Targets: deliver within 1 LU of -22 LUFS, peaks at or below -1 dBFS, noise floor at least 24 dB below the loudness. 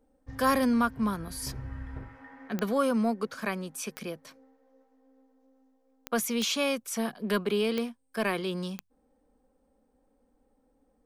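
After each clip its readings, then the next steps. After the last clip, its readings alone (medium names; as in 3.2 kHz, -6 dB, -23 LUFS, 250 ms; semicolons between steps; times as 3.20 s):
clicks found 6; loudness -30.0 LUFS; peak level -13.0 dBFS; loudness target -22.0 LUFS
-> de-click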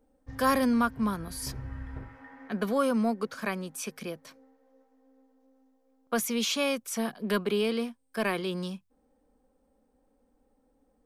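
clicks found 0; loudness -30.0 LUFS; peak level -13.0 dBFS; loudness target -22.0 LUFS
-> trim +8 dB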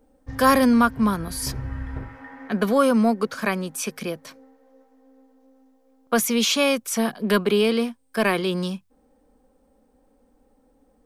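loudness -22.0 LUFS; peak level -5.0 dBFS; noise floor -62 dBFS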